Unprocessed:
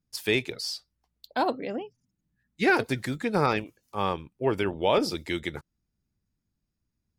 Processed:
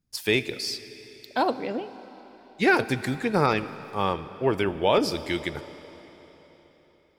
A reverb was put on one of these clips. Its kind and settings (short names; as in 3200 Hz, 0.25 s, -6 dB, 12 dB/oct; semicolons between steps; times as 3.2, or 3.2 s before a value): digital reverb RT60 4.1 s, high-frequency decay 0.95×, pre-delay 0 ms, DRR 13.5 dB; gain +2 dB